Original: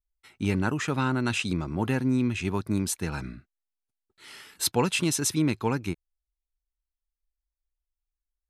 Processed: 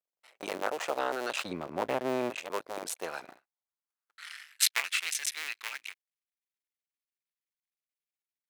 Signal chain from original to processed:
sub-harmonics by changed cycles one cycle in 2, muted
0:01.45–0:02.30: bass and treble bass +13 dB, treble −7 dB
0:03.24–0:04.89: transient designer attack +10 dB, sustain −6 dB
high-pass filter sweep 570 Hz → 2,100 Hz, 0:03.05–0:04.67
boost into a limiter +5 dB
level −8 dB

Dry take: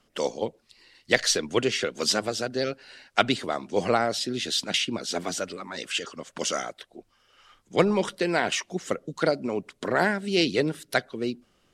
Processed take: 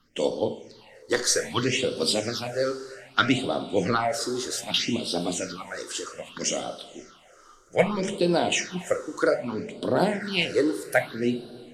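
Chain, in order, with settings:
coupled-rooms reverb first 0.4 s, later 2.9 s, from −15 dB, DRR 5 dB
all-pass phaser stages 6, 0.63 Hz, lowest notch 170–2,000 Hz
level +2.5 dB

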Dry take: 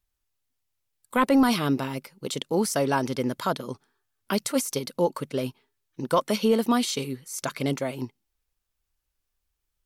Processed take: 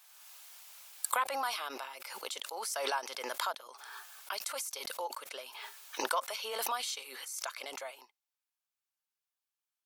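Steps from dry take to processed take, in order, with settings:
high-pass filter 700 Hz 24 dB per octave
notch filter 1,900 Hz, Q 17
background raised ahead of every attack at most 28 dB per second
level −8 dB

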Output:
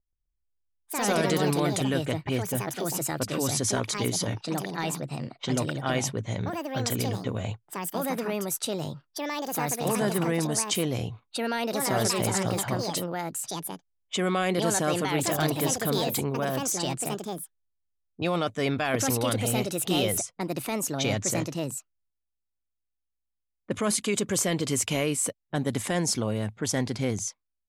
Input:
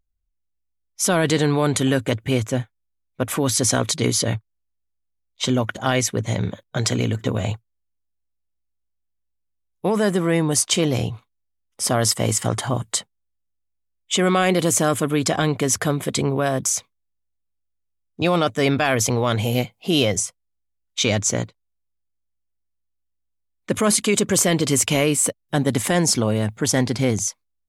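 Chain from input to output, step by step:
low-pass that shuts in the quiet parts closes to 730 Hz, open at −17 dBFS
delay with pitch and tempo change per echo 128 ms, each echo +4 semitones, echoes 2
level −8 dB

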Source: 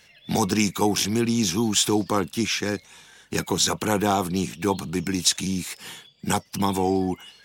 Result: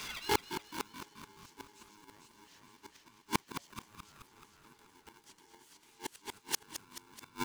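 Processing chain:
reversed playback
downward compressor 10 to 1, threshold −30 dBFS, peak gain reduction 15.5 dB
reversed playback
Butterworth high-pass 210 Hz 36 dB per octave
parametric band 1,300 Hz −2 dB 0.61 octaves
repeating echo 449 ms, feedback 44%, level −3 dB
gate with flip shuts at −27 dBFS, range −40 dB
on a send: echo with shifted repeats 215 ms, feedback 57%, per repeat +49 Hz, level −10 dB
on the sum: ring modulator with a square carrier 630 Hz
level +12 dB

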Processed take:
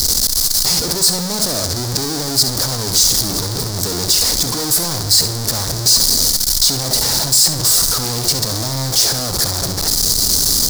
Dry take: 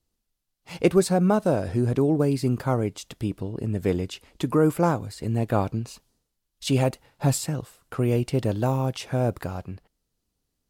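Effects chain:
sign of each sample alone
high shelf with overshoot 3,600 Hz +10 dB, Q 3
flutter between parallel walls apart 11.6 metres, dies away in 0.41 s
level +2 dB

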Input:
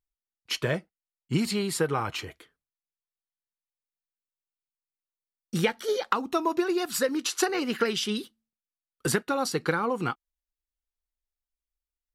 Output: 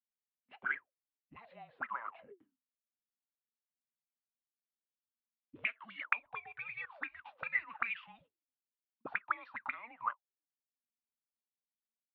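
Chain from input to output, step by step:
single-sideband voice off tune −230 Hz 310–3,500 Hz
0:01.37–0:02.05: spectral tilt +1.5 dB per octave
envelope filter 230–2,400 Hz, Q 21, up, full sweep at −23.5 dBFS
level +9.5 dB

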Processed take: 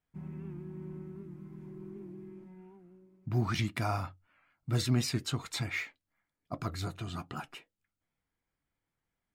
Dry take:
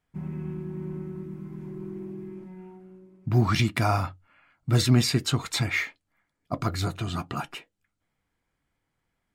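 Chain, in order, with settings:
wow of a warped record 78 rpm, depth 100 cents
level −8.5 dB

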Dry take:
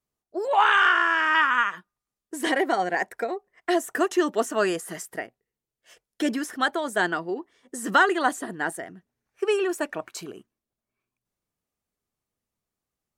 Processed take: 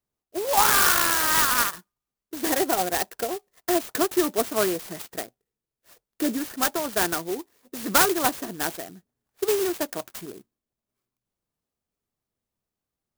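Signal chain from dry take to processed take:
converter with an unsteady clock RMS 0.11 ms

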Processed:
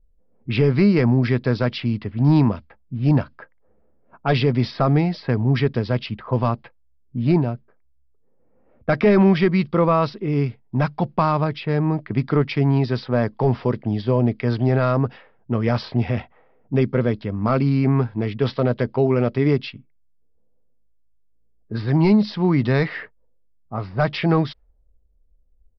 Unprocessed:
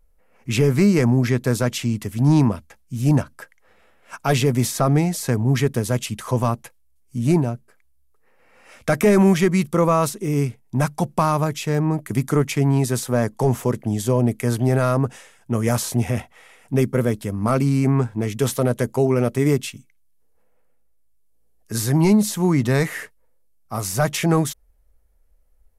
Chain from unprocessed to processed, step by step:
downsampling to 11,025 Hz
low-pass that shuts in the quiet parts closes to 350 Hz, open at −16.5 dBFS

